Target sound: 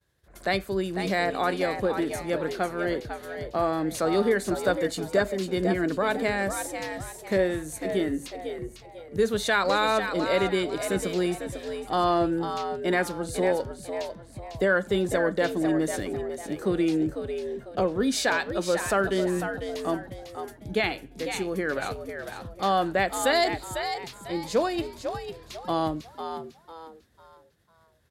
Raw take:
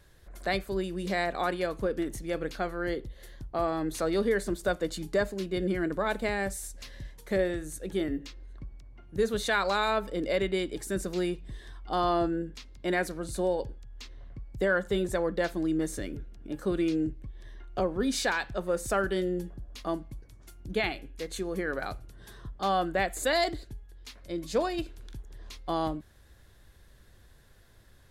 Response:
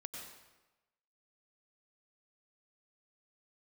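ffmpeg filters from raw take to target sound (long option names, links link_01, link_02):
-filter_complex "[0:a]highpass=frequency=58:width=0.5412,highpass=frequency=58:width=1.3066,agate=range=-33dB:threshold=-51dB:ratio=3:detection=peak,asplit=5[link_01][link_02][link_03][link_04][link_05];[link_02]adelay=499,afreqshift=81,volume=-8dB[link_06];[link_03]adelay=998,afreqshift=162,volume=-17.6dB[link_07];[link_04]adelay=1497,afreqshift=243,volume=-27.3dB[link_08];[link_05]adelay=1996,afreqshift=324,volume=-36.9dB[link_09];[link_01][link_06][link_07][link_08][link_09]amix=inputs=5:normalize=0,volume=3.5dB"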